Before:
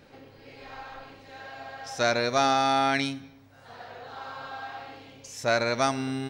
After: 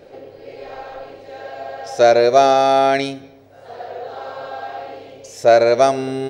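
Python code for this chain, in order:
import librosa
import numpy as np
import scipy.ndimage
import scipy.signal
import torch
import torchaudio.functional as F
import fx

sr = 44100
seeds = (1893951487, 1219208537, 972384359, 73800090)

y = fx.band_shelf(x, sr, hz=500.0, db=12.0, octaves=1.3)
y = y * librosa.db_to_amplitude(3.5)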